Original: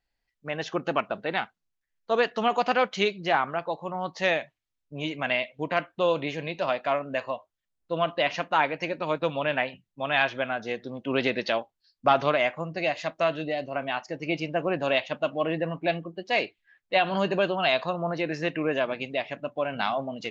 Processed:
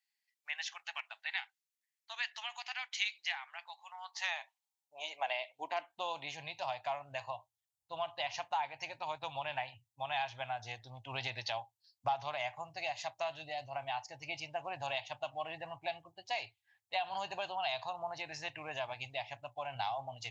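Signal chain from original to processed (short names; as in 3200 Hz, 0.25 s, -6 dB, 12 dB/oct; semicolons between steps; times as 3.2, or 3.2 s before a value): EQ curve 110 Hz 0 dB, 170 Hz -27 dB, 250 Hz -25 dB, 500 Hz -20 dB, 820 Hz +5 dB, 1300 Hz -12 dB, 2000 Hz -6 dB, 7600 Hz +6 dB; compressor 2.5:1, threshold -31 dBFS, peak gain reduction 10.5 dB; high-pass sweep 1900 Hz -> 120 Hz, 3.85–6.66; gain -4 dB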